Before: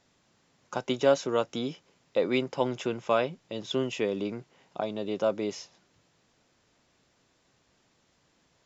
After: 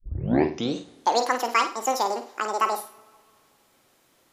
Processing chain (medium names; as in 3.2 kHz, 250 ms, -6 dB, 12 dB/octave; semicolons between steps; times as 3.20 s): tape start-up on the opening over 2.53 s; level rider gain up to 7.5 dB; speed mistake 7.5 ips tape played at 15 ips; flutter echo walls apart 8.8 m, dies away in 0.33 s; on a send at -11 dB: reverberation, pre-delay 3 ms; on the sum: trim -3 dB